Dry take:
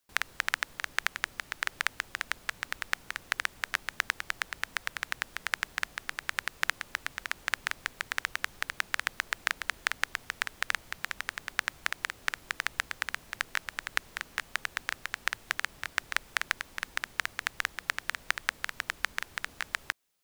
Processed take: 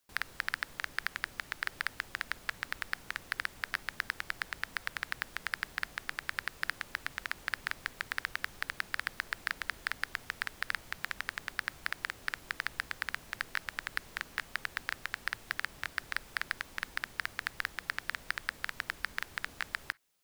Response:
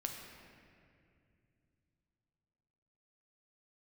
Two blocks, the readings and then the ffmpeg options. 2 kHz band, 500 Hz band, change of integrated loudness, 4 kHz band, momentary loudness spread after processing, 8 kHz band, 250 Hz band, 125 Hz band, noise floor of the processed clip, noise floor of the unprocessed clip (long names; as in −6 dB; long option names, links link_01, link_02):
−3.5 dB, −4.0 dB, −4.0 dB, −5.0 dB, 3 LU, −8.5 dB, −0.5 dB, +0.5 dB, −55 dBFS, −56 dBFS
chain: -filter_complex "[0:a]asoftclip=type=tanh:threshold=-17dB,asplit=2[link_01][link_02];[1:a]atrim=start_sample=2205,atrim=end_sample=3087[link_03];[link_02][link_03]afir=irnorm=-1:irlink=0,volume=-18dB[link_04];[link_01][link_04]amix=inputs=2:normalize=0"